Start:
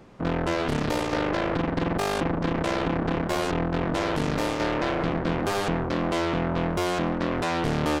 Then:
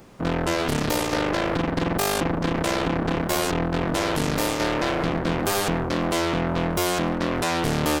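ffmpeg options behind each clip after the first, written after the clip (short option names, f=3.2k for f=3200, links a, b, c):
-af "aemphasis=mode=production:type=50fm,volume=2dB"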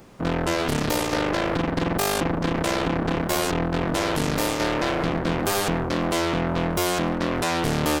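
-af anull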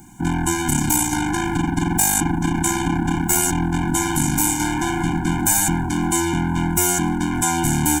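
-af "highshelf=f=5.9k:t=q:w=3:g=8.5,afftfilt=real='re*eq(mod(floor(b*sr/1024/350),2),0)':imag='im*eq(mod(floor(b*sr/1024/350),2),0)':win_size=1024:overlap=0.75,volume=5dB"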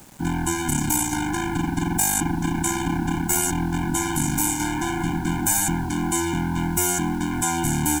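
-af "acrusher=bits=6:mix=0:aa=0.000001,volume=-3.5dB"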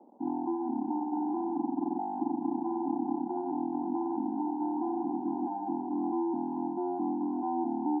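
-af "asuperpass=centerf=460:order=12:qfactor=0.67,volume=-4dB"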